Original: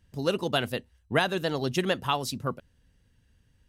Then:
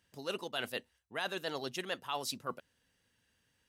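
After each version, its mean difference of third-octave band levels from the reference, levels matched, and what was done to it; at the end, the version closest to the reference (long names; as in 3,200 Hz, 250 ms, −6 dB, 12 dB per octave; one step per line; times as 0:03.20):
5.0 dB: high-pass filter 690 Hz 6 dB per octave
reversed playback
downward compressor 6 to 1, threshold −34 dBFS, peak gain reduction 13 dB
reversed playback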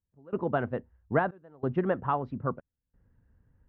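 11.5 dB: low-pass filter 1,500 Hz 24 dB per octave
gate pattern "..xxxxxx" 92 BPM −24 dB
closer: first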